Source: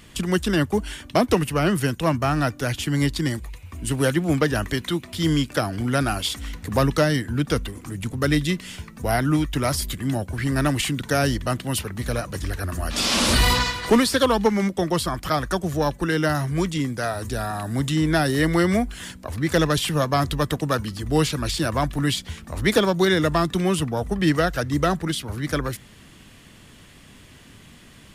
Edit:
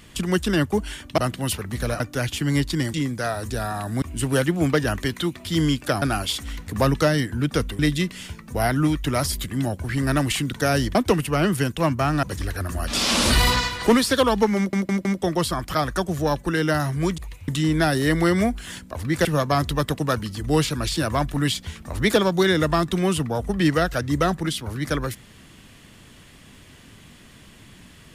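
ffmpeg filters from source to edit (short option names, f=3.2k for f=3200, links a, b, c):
-filter_complex "[0:a]asplit=15[a][b][c][d][e][f][g][h][i][j][k][l][m][n][o];[a]atrim=end=1.182[p];[b]atrim=start=11.438:end=12.262[q];[c]atrim=start=2.458:end=3.402[r];[d]atrim=start=16.728:end=17.812[s];[e]atrim=start=3.698:end=5.702[t];[f]atrim=start=5.978:end=7.752[u];[g]atrim=start=8.278:end=11.442[v];[h]atrim=start=1.178:end=2.462[w];[i]atrim=start=12.258:end=14.762[x];[j]atrim=start=14.598:end=14.762[y];[k]atrim=start=14.598:end=14.762[z];[l]atrim=start=14.598:end=16.732[aa];[m]atrim=start=3.398:end=3.702[ab];[n]atrim=start=17.808:end=19.582[ac];[o]atrim=start=19.868[ad];[p][q]acrossfade=d=0.004:c1=hsin:c2=hsin[ae];[ae][r]acrossfade=d=0.004:c1=hsin:c2=hsin[af];[af][s]acrossfade=d=0.004:c1=hsin:c2=hsin[ag];[ag][t]acrossfade=d=0.004:c1=hsin:c2=hsin[ah];[ah][u]acrossfade=d=0.004:c1=hsin:c2=hsin[ai];[ai][v]acrossfade=d=0.004:c1=hsin:c2=hsin[aj];[aj][w]acrossfade=d=0.004:c1=hsin:c2=hsin[ak];[ak][x]acrossfade=d=0.004:c1=hsin:c2=hsin[al];[al][y]acrossfade=d=0.004:c1=hsin:c2=hsin[am];[am][z]acrossfade=d=0.004:c1=hsin:c2=hsin[an];[an][aa]acrossfade=d=0.004:c1=hsin:c2=hsin[ao];[ao][ab]acrossfade=d=0.004:c1=hsin:c2=hsin[ap];[ap][ac]acrossfade=d=0.004:c1=hsin:c2=hsin[aq];[aq][ad]acrossfade=d=0.004:c1=hsin:c2=hsin"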